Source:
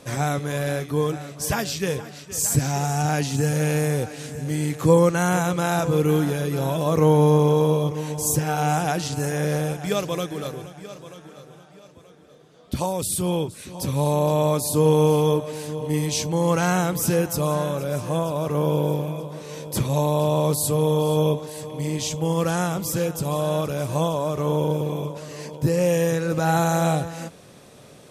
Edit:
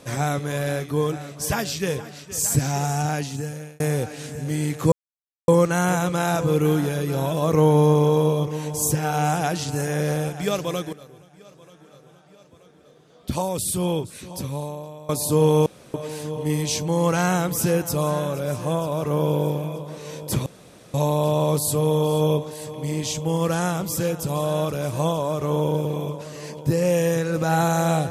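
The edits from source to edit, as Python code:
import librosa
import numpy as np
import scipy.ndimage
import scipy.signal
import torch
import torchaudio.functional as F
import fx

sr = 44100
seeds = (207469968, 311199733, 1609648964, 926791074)

y = fx.edit(x, sr, fx.fade_out_span(start_s=2.91, length_s=0.89),
    fx.insert_silence(at_s=4.92, length_s=0.56),
    fx.fade_in_from(start_s=10.37, length_s=2.41, floor_db=-15.5),
    fx.fade_out_to(start_s=13.69, length_s=0.84, curve='qua', floor_db=-21.5),
    fx.room_tone_fill(start_s=15.1, length_s=0.28),
    fx.insert_room_tone(at_s=19.9, length_s=0.48), tone=tone)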